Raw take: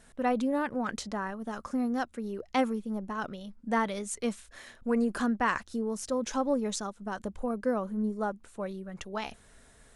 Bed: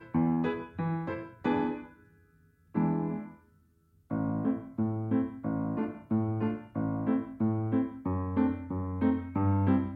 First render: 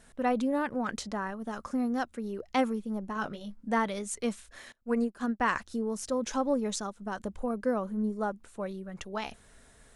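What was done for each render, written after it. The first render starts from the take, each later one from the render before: 3.14–3.69 doubler 19 ms -5.5 dB; 4.72–5.4 upward expander 2.5:1, over -40 dBFS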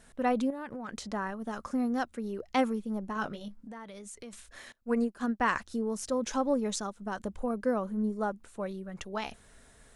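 0.5–1.13 compressor, threshold -36 dBFS; 3.48–4.33 compressor 8:1, threshold -42 dBFS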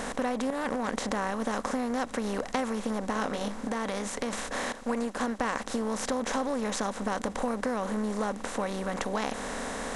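per-bin compression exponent 0.4; compressor, threshold -26 dBFS, peak gain reduction 7.5 dB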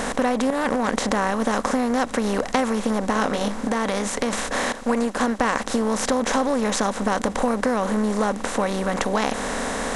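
gain +8.5 dB

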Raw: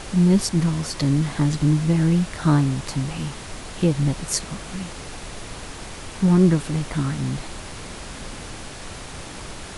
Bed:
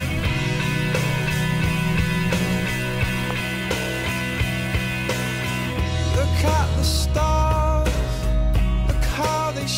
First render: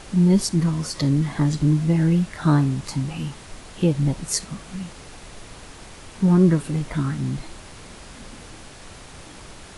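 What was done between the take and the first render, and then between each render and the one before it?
noise print and reduce 6 dB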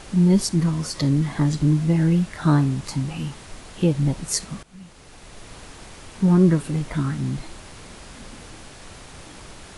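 4.63–5.55 fade in, from -17 dB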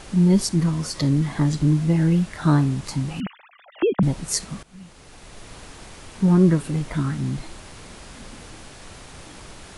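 3.2–4.03 sine-wave speech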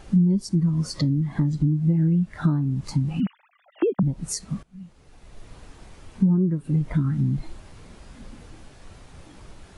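compressor 12:1, threshold -25 dBFS, peak gain reduction 15 dB; spectral expander 1.5:1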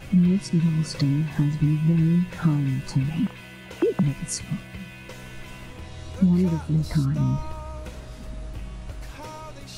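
add bed -17 dB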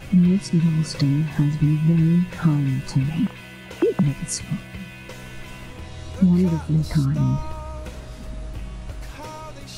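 gain +2.5 dB

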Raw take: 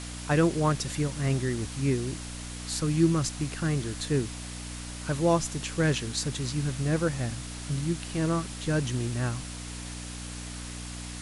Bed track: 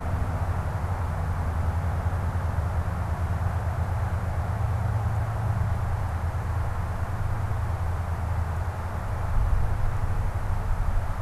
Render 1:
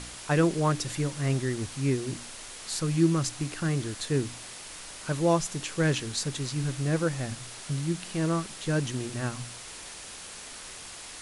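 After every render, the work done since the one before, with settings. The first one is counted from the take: de-hum 60 Hz, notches 5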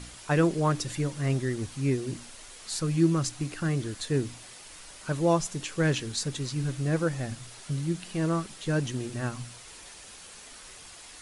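denoiser 6 dB, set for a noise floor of -43 dBFS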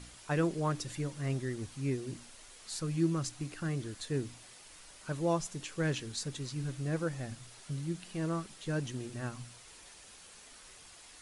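gain -7 dB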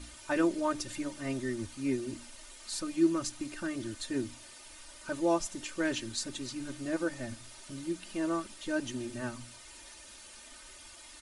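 comb 3.3 ms, depth 99%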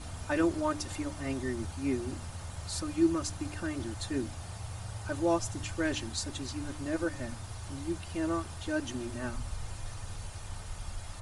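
add bed track -15 dB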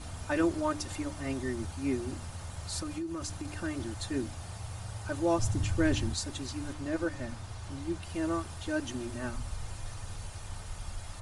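2.82–3.48 compressor 16:1, threshold -32 dBFS; 5.38–6.14 low shelf 280 Hz +10.5 dB; 6.73–8.03 high shelf 9900 Hz -10.5 dB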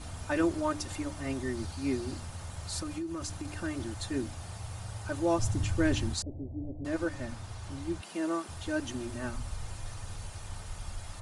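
1.55–2.21 bell 4500 Hz +7 dB 0.46 oct; 6.22–6.85 steep low-pass 670 Hz 48 dB/oct; 8.01–8.49 steep high-pass 180 Hz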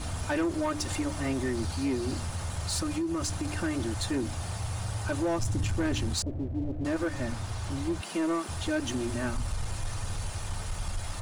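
compressor 2.5:1, threshold -32 dBFS, peak gain reduction 7.5 dB; sample leveller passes 2

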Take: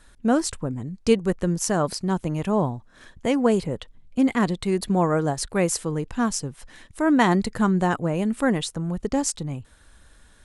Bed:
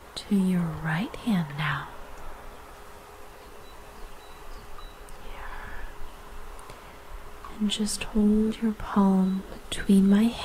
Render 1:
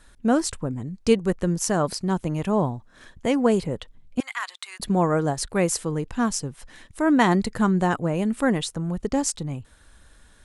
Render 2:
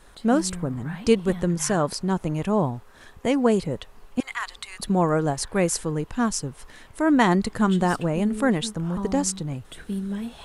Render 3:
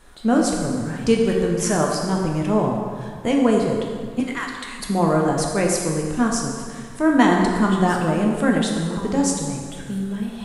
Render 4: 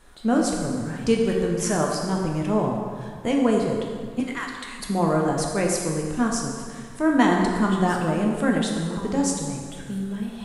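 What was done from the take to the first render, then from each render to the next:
4.2–4.8 HPF 1100 Hz 24 dB/oct
add bed -10 dB
plate-style reverb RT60 1.9 s, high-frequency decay 0.75×, DRR -0.5 dB
gain -3 dB

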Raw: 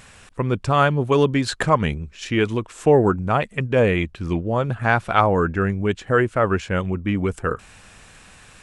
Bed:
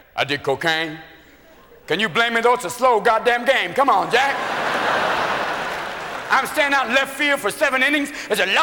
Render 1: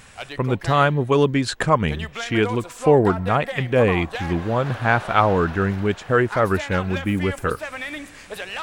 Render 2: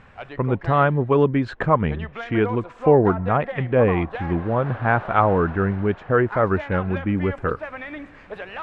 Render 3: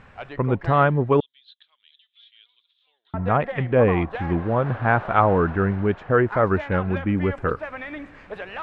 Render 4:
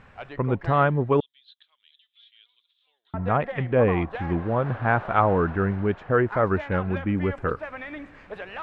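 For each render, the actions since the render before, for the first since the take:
add bed -14 dB
LPF 1700 Hz 12 dB/oct
1.2–3.14 Butterworth band-pass 3600 Hz, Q 5.4
gain -2.5 dB

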